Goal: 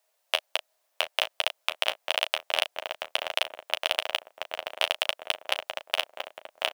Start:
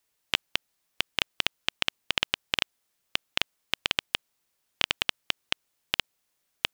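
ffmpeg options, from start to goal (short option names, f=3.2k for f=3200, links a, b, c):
-filter_complex "[0:a]asplit=2[a][b];[b]adelay=680,lowpass=f=1.6k:p=1,volume=-5dB,asplit=2[c][d];[d]adelay=680,lowpass=f=1.6k:p=1,volume=0.47,asplit=2[e][f];[f]adelay=680,lowpass=f=1.6k:p=1,volume=0.47,asplit=2[g][h];[h]adelay=680,lowpass=f=1.6k:p=1,volume=0.47,asplit=2[i][j];[j]adelay=680,lowpass=f=1.6k:p=1,volume=0.47,asplit=2[k][l];[l]adelay=680,lowpass=f=1.6k:p=1,volume=0.47[m];[c][e][g][i][k][m]amix=inputs=6:normalize=0[n];[a][n]amix=inputs=2:normalize=0,acontrast=22,highpass=f=620:t=q:w=4.9,acrusher=bits=4:mode=log:mix=0:aa=0.000001,asplit=2[o][p];[p]aecho=0:1:11|36:0.316|0.237[q];[o][q]amix=inputs=2:normalize=0,volume=-4dB"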